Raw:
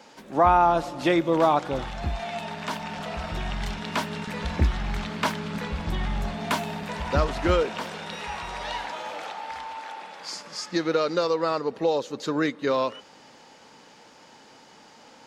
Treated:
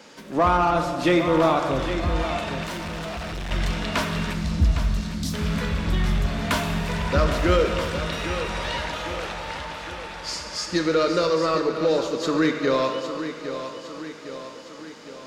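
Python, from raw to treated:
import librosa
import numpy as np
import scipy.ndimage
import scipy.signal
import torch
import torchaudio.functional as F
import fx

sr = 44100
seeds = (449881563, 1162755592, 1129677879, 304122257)

p1 = fx.cheby2_bandstop(x, sr, low_hz=540.0, high_hz=2100.0, order=4, stop_db=50, at=(4.33, 5.34))
p2 = fx.rev_plate(p1, sr, seeds[0], rt60_s=1.6, hf_ratio=0.9, predelay_ms=0, drr_db=5.0)
p3 = 10.0 ** (-22.0 / 20.0) * np.tanh(p2 / 10.0 ** (-22.0 / 20.0))
p4 = p2 + (p3 * 10.0 ** (-4.0 / 20.0))
p5 = fx.peak_eq(p4, sr, hz=820.0, db=-9.0, octaves=0.44)
p6 = fx.echo_feedback(p5, sr, ms=808, feedback_pct=55, wet_db=-10.5)
y = fx.overload_stage(p6, sr, gain_db=29.0, at=(2.64, 3.51))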